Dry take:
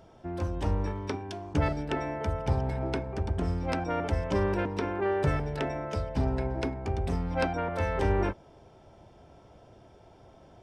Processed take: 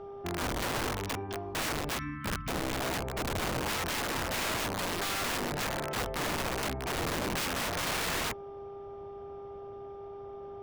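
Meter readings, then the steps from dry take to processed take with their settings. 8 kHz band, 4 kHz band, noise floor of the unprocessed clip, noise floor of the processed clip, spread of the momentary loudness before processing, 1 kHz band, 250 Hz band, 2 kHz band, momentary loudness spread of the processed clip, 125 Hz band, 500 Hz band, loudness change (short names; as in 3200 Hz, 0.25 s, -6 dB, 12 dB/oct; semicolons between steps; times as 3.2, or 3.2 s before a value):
+17.0 dB, +11.0 dB, -56 dBFS, -44 dBFS, 6 LU, -0.5 dB, -4.5 dB, +4.5 dB, 13 LU, -9.0 dB, -4.5 dB, -2.0 dB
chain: buzz 400 Hz, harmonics 3, -44 dBFS -9 dB/oct; spectral delete 1.98–2.72, 320–1000 Hz; LPF 3300 Hz 12 dB/oct; wrapped overs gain 27.5 dB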